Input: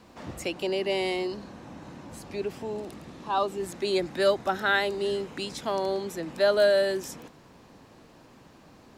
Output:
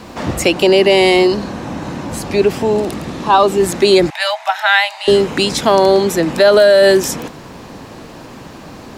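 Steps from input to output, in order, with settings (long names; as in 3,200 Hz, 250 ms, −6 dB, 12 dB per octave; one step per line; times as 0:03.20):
in parallel at −10.5 dB: soft clipping −20.5 dBFS, distortion −13 dB
0:04.10–0:05.08: on the sum: Chebyshev high-pass with heavy ripple 620 Hz, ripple 9 dB
boost into a limiter +18 dB
level −1 dB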